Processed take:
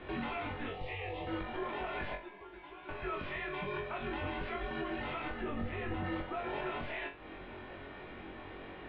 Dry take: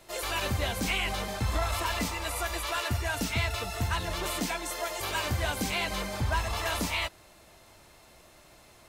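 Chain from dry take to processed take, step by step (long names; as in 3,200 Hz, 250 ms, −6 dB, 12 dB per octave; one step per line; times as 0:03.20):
downward compressor 12 to 1, threshold −40 dBFS, peak gain reduction 16.5 dB
0:00.70–0:01.27: phaser with its sweep stopped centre 350 Hz, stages 8
0:02.15–0:02.89: tuned comb filter 640 Hz, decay 0.19 s, harmonics all, mix 90%
0:05.41–0:06.04: spectral tilt −3.5 dB per octave
single-sideband voice off tune −290 Hz 260–3,500 Hz
brickwall limiter −40 dBFS, peak gain reduction 7.5 dB
high-frequency loss of the air 220 metres
flutter between parallel walls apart 3.7 metres, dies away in 0.3 s
level +9.5 dB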